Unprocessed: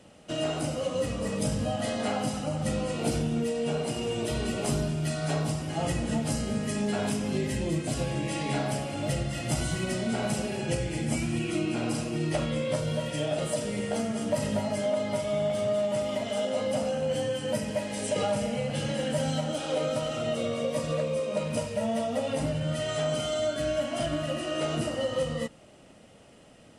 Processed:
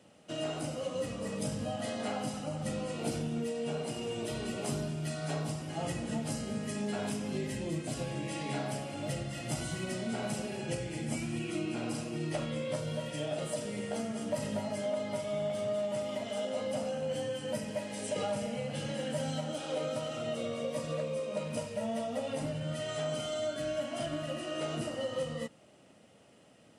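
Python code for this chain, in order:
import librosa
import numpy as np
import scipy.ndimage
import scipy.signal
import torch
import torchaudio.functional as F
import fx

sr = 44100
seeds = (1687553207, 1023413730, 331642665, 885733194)

y = scipy.signal.sosfilt(scipy.signal.butter(2, 100.0, 'highpass', fs=sr, output='sos'), x)
y = y * 10.0 ** (-6.0 / 20.0)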